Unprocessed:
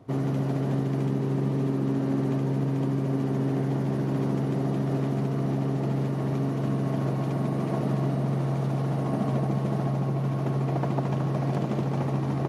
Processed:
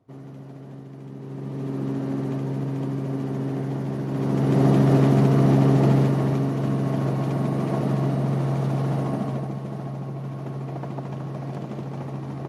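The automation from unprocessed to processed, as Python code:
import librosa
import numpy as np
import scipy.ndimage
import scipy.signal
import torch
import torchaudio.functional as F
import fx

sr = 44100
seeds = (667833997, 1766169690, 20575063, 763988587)

y = fx.gain(x, sr, db=fx.line((1.0, -13.5), (1.8, -1.0), (4.08, -1.0), (4.64, 9.5), (5.89, 9.5), (6.48, 3.0), (8.98, 3.0), (9.6, -5.0)))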